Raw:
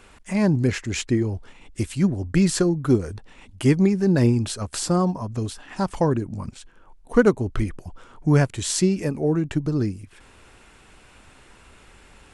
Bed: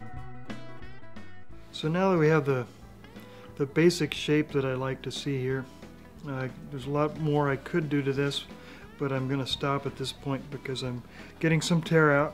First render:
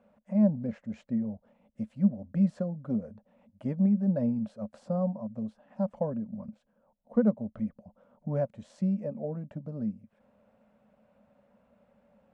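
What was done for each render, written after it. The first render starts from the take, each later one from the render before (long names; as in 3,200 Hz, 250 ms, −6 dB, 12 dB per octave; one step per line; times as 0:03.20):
pair of resonant band-passes 350 Hz, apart 1.4 octaves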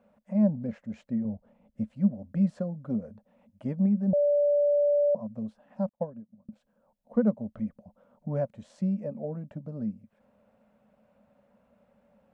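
0:01.25–0:01.93: spectral tilt −1.5 dB per octave
0:04.13–0:05.15: beep over 581 Hz −20 dBFS
0:05.89–0:06.49: expander for the loud parts 2.5 to 1, over −49 dBFS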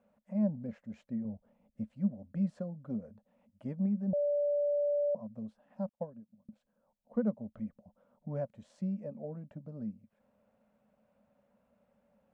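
level −7 dB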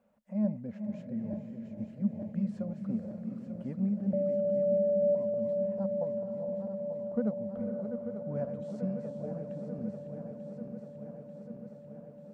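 feedback delay that plays each chunk backwards 445 ms, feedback 84%, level −8.5 dB
on a send: feedback delay with all-pass diffusion 484 ms, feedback 46%, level −8 dB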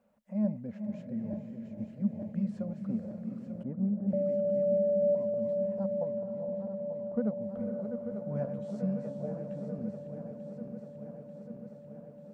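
0:03.63–0:04.08: low-pass filter 1,100 Hz
0:06.03–0:07.41: high-frequency loss of the air 110 metres
0:08.10–0:09.76: double-tracking delay 15 ms −5.5 dB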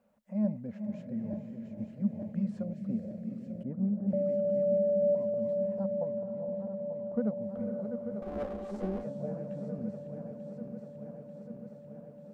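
0:02.63–0:03.71: flat-topped bell 1,100 Hz −10 dB 1.1 octaves
0:05.81–0:07.11: high-frequency loss of the air 90 metres
0:08.22–0:09.04: lower of the sound and its delayed copy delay 3.7 ms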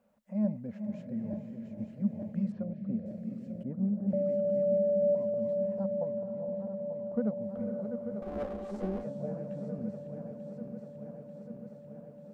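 0:02.52–0:03.06: high-frequency loss of the air 270 metres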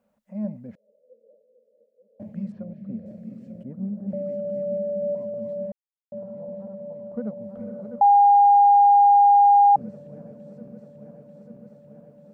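0:00.75–0:02.20: flat-topped band-pass 490 Hz, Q 6.7
0:05.72–0:06.12: silence
0:08.01–0:09.76: beep over 811 Hz −11 dBFS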